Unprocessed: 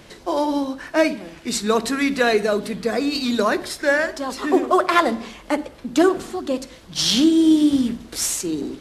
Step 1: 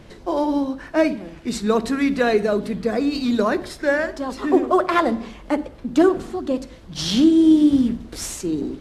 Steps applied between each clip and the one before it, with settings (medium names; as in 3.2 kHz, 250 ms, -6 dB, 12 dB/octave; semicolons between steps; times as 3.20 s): tilt EQ -2 dB/octave; trim -2 dB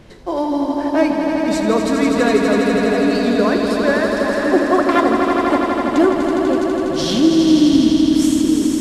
echo with a slow build-up 82 ms, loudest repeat 5, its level -7 dB; trim +1 dB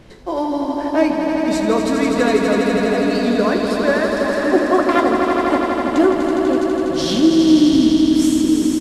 doubling 16 ms -11 dB; trim -1 dB